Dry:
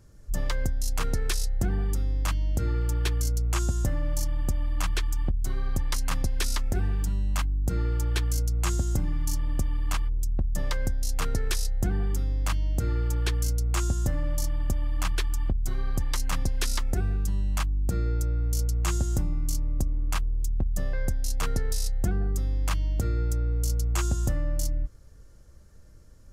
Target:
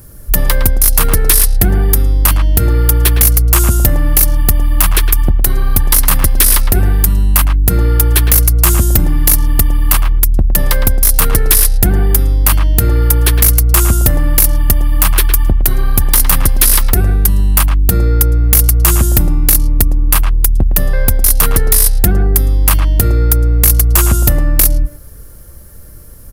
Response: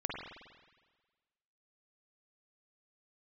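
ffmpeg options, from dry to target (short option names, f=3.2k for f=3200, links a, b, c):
-filter_complex "[0:a]asplit=2[a][b];[b]adelay=110,highpass=300,lowpass=3.4k,asoftclip=type=hard:threshold=-24dB,volume=-7dB[c];[a][c]amix=inputs=2:normalize=0,aexciter=amount=12.5:drive=2.4:freq=9.6k,aeval=exprs='0.596*sin(PI/2*2.82*val(0)/0.596)':c=same,volume=3dB"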